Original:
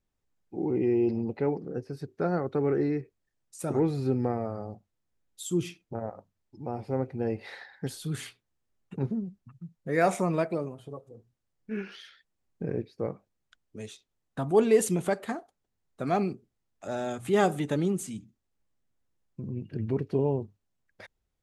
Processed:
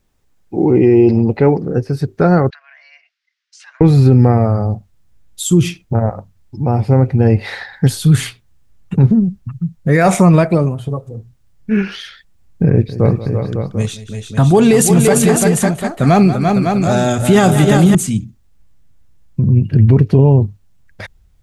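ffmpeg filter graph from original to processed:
ffmpeg -i in.wav -filter_complex "[0:a]asettb=1/sr,asplit=3[link_01][link_02][link_03];[link_01]atrim=end=2.504[link_04];[link_02]atrim=start=2.5:end=3.81,asetpts=PTS-STARTPTS,afade=type=in:duration=0.004:curve=qsin,afade=type=out:start_time=1.306:duration=0.004:curve=qsin,acompressor=threshold=-41dB:ratio=4:attack=3.2:release=140:knee=1:detection=peak,afreqshift=260,asuperpass=centerf=2900:order=8:qfactor=0.72[link_05];[link_03]atrim=start=3.806[link_06];[link_04][link_05]acrossfade=duration=0.004:curve1=hsin:curve2=qsin[link_07];[link_07][link_06]acrossfade=duration=0.004:curve1=qsin:curve2=hsin,asettb=1/sr,asplit=3[link_08][link_09][link_10];[link_08]atrim=end=12.704[link_11];[link_09]atrim=start=12.7:end=17.95,asetpts=PTS-STARTPTS,afade=type=in:duration=0.004:curve=qsin,afade=type=out:start_time=5.246:duration=0.004:curve=qsin,aecho=1:1:182|341|366|553|743:0.178|0.473|0.106|0.422|0.251,atrim=end_sample=231525,adynamicequalizer=threshold=0.00562:dfrequency=3300:dqfactor=0.7:tfrequency=3300:tqfactor=0.7:attack=5:release=100:ratio=0.375:range=2.5:mode=boostabove:tftype=highshelf[link_12];[link_10]atrim=start=17.946[link_13];[link_11][link_12]acrossfade=duration=0.004:curve1=hsin:curve2=qsin[link_14];[link_14][link_13]acrossfade=duration=0.004:curve1=qsin:curve2=hsin,asubboost=boost=4:cutoff=160,alimiter=level_in=18.5dB:limit=-1dB:release=50:level=0:latency=1,volume=-1dB" out.wav

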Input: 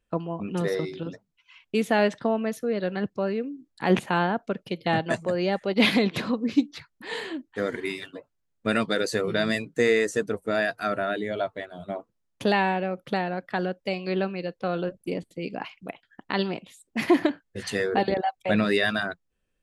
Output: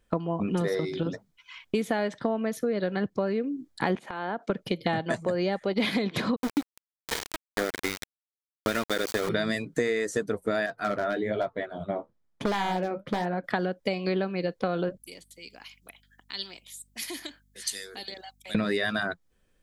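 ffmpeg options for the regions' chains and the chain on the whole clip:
ffmpeg -i in.wav -filter_complex "[0:a]asettb=1/sr,asplit=3[link_01][link_02][link_03];[link_01]atrim=end=3.954[link_04];[link_02]atrim=start=3.95:end=4.5,asetpts=PTS-STARTPTS,afade=type=in:duration=0.004:curve=qsin,afade=type=out:start_time=0.546:duration=0.004:curve=qsin,highpass=250,highshelf=frequency=7900:gain=-9.5,acompressor=threshold=-34dB:ratio=12:attack=3.2:release=140:knee=1:detection=peak[link_05];[link_03]atrim=start=4.496[link_06];[link_04][link_05]acrossfade=duration=0.004:curve1=hsin:curve2=qsin[link_07];[link_07][link_06]acrossfade=duration=0.004:curve1=qsin:curve2=hsin,asettb=1/sr,asplit=3[link_08][link_09][link_10];[link_08]atrim=end=6.364[link_11];[link_09]atrim=start=6.36:end=9.29,asetpts=PTS-STARTPTS,afade=type=in:duration=0.004:curve=qsin,afade=type=out:start_time=2.926:duration=0.004:curve=qsin,equalizer=frequency=150:width_type=o:width=0.79:gain=-9,bandreject=frequency=7200:width=16,aeval=exprs='val(0)*gte(abs(val(0)),0.0447)':channel_layout=same[link_12];[link_10]atrim=start=9.286[link_13];[link_11][link_12]acrossfade=duration=0.004:curve1=hsin:curve2=qsin[link_14];[link_14][link_13]acrossfade=duration=0.004:curve1=qsin:curve2=hsin,asettb=1/sr,asplit=3[link_15][link_16][link_17];[link_15]atrim=end=10.664[link_18];[link_16]atrim=start=10.66:end=13.44,asetpts=PTS-STARTPTS,afade=type=in:duration=0.004:curve=qsin,afade=type=out:start_time=2.776:duration=0.004:curve=qsin,lowpass=frequency=2100:poles=1,aeval=exprs='0.112*(abs(mod(val(0)/0.112+3,4)-2)-1)':channel_layout=same,flanger=delay=4.3:depth=9.2:regen=-48:speed=1.1:shape=sinusoidal[link_19];[link_17]atrim=start=13.436[link_20];[link_18][link_19]acrossfade=duration=0.004:curve1=hsin:curve2=qsin[link_21];[link_21][link_20]acrossfade=duration=0.004:curve1=qsin:curve2=hsin,asettb=1/sr,asplit=3[link_22][link_23][link_24];[link_22]atrim=end=14.984[link_25];[link_23]atrim=start=14.98:end=18.55,asetpts=PTS-STARTPTS,afade=type=in:duration=0.004:curve=qsin,afade=type=out:start_time=3.566:duration=0.004:curve=qsin,aderivative,acrossover=split=380|3000[link_26][link_27][link_28];[link_27]acompressor=threshold=-58dB:ratio=2.5:attack=3.2:release=140:knee=2.83:detection=peak[link_29];[link_26][link_29][link_28]amix=inputs=3:normalize=0,aeval=exprs='val(0)+0.000224*(sin(2*PI*50*n/s)+sin(2*PI*2*50*n/s)/2+sin(2*PI*3*50*n/s)/3+sin(2*PI*4*50*n/s)/4+sin(2*PI*5*50*n/s)/5)':channel_layout=same[link_30];[link_24]atrim=start=18.546[link_31];[link_25][link_30]acrossfade=duration=0.004:curve1=hsin:curve2=qsin[link_32];[link_32][link_31]acrossfade=duration=0.004:curve1=qsin:curve2=hsin,bandreject=frequency=2700:width=10,acompressor=threshold=-33dB:ratio=6,volume=8.5dB" out.wav

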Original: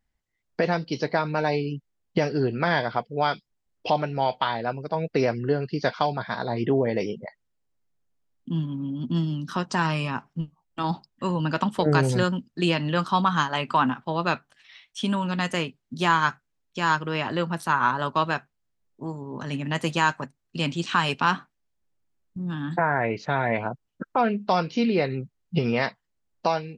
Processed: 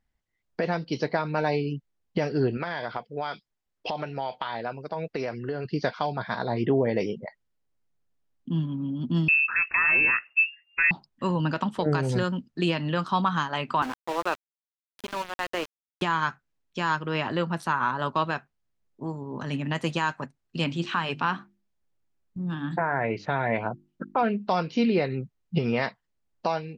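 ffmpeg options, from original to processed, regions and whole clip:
ffmpeg -i in.wav -filter_complex "[0:a]asettb=1/sr,asplit=3[link_01][link_02][link_03];[link_01]atrim=end=2.574[link_04];[link_02]atrim=start=2.57:end=5.65,asetpts=PTS-STARTPTS,afade=type=in:duration=0.004:curve=qsin,afade=type=out:start_time=3.076:duration=0.004:curve=qsin,lowshelf=frequency=370:gain=-7,acompressor=threshold=-25dB:ratio=10:attack=3.2:release=140:knee=1:detection=peak[link_05];[link_03]atrim=start=5.646[link_06];[link_04][link_05]acrossfade=duration=0.004:curve1=hsin:curve2=qsin[link_07];[link_07][link_06]acrossfade=duration=0.004:curve1=qsin:curve2=hsin,asettb=1/sr,asplit=3[link_08][link_09][link_10];[link_08]atrim=end=9.284[link_11];[link_09]atrim=start=9.28:end=10.91,asetpts=PTS-STARTPTS,afade=type=in:duration=0.004:curve=qsin,afade=type=out:start_time=1.626:duration=0.004:curve=qsin,lowshelf=frequency=140:gain=8,acontrast=67,lowpass=frequency=2400:width_type=q:width=0.5098,lowpass=frequency=2400:width_type=q:width=0.6013,lowpass=frequency=2400:width_type=q:width=0.9,lowpass=frequency=2400:width_type=q:width=2.563,afreqshift=-2800[link_12];[link_10]atrim=start=10.906[link_13];[link_11][link_12]acrossfade=duration=0.004:curve1=hsin:curve2=qsin[link_14];[link_14][link_13]acrossfade=duration=0.004:curve1=qsin:curve2=hsin,asettb=1/sr,asplit=3[link_15][link_16][link_17];[link_15]atrim=end=13.824[link_18];[link_16]atrim=start=13.82:end=16.02,asetpts=PTS-STARTPTS,afade=type=in:duration=0.004:curve=qsin,afade=type=out:start_time=2.196:duration=0.004:curve=qsin,highpass=frequency=300:width=0.5412,highpass=frequency=300:width=1.3066,aemphasis=mode=reproduction:type=75kf,aeval=exprs='val(0)*gte(abs(val(0)),0.0316)':channel_layout=same[link_19];[link_17]atrim=start=16.016[link_20];[link_18][link_19]acrossfade=duration=0.004:curve1=hsin:curve2=qsin[link_21];[link_21][link_20]acrossfade=duration=0.004:curve1=qsin:curve2=hsin,asettb=1/sr,asplit=3[link_22][link_23][link_24];[link_22]atrim=end=20.644[link_25];[link_23]atrim=start=20.64:end=24.23,asetpts=PTS-STARTPTS,afade=type=in:duration=0.004:curve=qsin,afade=type=out:start_time=3.586:duration=0.004:curve=qsin,acrossover=split=3900[link_26][link_27];[link_27]acompressor=threshold=-45dB:ratio=4:attack=1:release=60[link_28];[link_26][link_28]amix=inputs=2:normalize=0,bandreject=frequency=50:width_type=h:width=6,bandreject=frequency=100:width_type=h:width=6,bandreject=frequency=150:width_type=h:width=6,bandreject=frequency=200:width_type=h:width=6,bandreject=frequency=250:width_type=h:width=6,bandreject=frequency=300:width_type=h:width=6,bandreject=frequency=350:width_type=h:width=6[link_29];[link_24]atrim=start=24.226[link_30];[link_25][link_29]acrossfade=duration=0.004:curve1=hsin:curve2=qsin[link_31];[link_31][link_30]acrossfade=duration=0.004:curve1=qsin:curve2=hsin,highshelf=frequency=7900:gain=-9.5,alimiter=limit=-13.5dB:level=0:latency=1:release=231" out.wav

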